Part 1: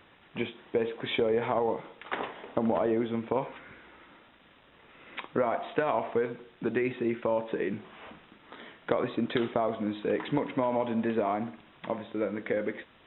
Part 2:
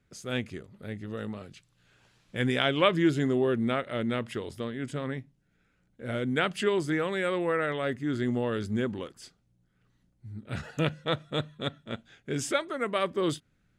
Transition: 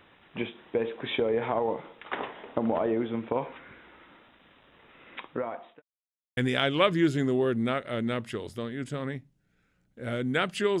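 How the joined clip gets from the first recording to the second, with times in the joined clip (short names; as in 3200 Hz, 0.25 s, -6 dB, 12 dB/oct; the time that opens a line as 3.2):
part 1
4.75–5.82 fade out equal-power
5.82–6.37 mute
6.37 switch to part 2 from 2.39 s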